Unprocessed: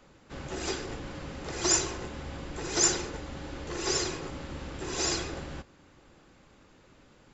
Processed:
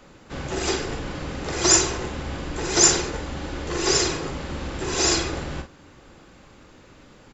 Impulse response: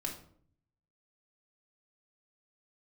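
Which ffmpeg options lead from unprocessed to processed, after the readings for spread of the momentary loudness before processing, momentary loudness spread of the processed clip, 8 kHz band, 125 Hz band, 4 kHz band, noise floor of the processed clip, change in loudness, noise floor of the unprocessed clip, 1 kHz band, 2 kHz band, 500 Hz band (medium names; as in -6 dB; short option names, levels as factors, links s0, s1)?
15 LU, 15 LU, no reading, +8.5 dB, +8.5 dB, -50 dBFS, +8.5 dB, -59 dBFS, +8.5 dB, +8.5 dB, +8.5 dB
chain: -filter_complex "[0:a]asplit=2[s0][s1];[s1]adelay=45,volume=0.398[s2];[s0][s2]amix=inputs=2:normalize=0,volume=2.51"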